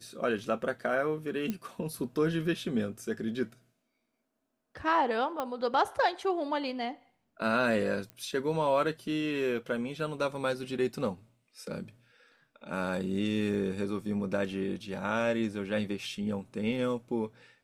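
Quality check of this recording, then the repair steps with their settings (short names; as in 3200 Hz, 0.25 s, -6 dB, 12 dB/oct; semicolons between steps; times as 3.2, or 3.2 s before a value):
1.5 pop -19 dBFS
5.4 pop -19 dBFS
8.1 pop -27 dBFS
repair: de-click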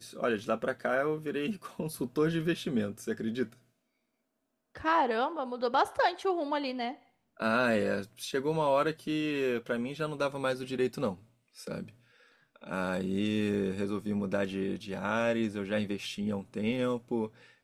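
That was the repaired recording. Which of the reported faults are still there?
none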